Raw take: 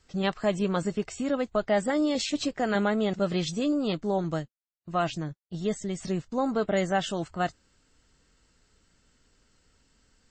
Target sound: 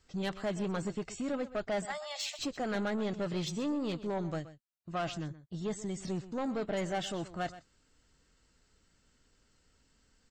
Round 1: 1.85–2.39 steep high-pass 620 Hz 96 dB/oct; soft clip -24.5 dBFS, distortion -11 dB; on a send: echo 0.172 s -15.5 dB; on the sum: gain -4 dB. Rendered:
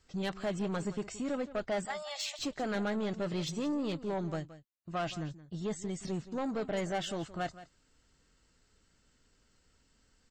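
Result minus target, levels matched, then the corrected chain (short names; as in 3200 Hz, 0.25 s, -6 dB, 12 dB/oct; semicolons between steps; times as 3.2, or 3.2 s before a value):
echo 47 ms late
1.85–2.39 steep high-pass 620 Hz 96 dB/oct; soft clip -24.5 dBFS, distortion -11 dB; on a send: echo 0.125 s -15.5 dB; on the sum: gain -4 dB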